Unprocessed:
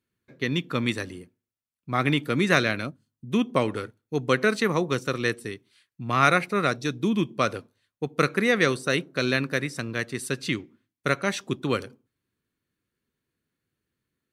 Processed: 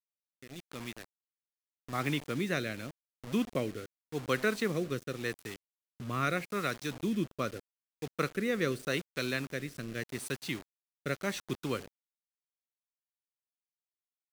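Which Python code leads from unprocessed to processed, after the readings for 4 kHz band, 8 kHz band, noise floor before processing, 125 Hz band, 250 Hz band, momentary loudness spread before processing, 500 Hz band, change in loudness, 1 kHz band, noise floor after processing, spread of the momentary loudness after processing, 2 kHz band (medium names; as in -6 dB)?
-9.5 dB, -7.0 dB, under -85 dBFS, -9.0 dB, -8.5 dB, 11 LU, -9.0 dB, -9.5 dB, -12.0 dB, under -85 dBFS, 14 LU, -10.5 dB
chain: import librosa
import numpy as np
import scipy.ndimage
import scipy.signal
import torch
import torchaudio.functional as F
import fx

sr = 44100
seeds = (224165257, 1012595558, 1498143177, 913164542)

y = fx.fade_in_head(x, sr, length_s=2.6)
y = fx.quant_dither(y, sr, seeds[0], bits=6, dither='none')
y = fx.rotary(y, sr, hz=0.85)
y = y * librosa.db_to_amplitude(-7.0)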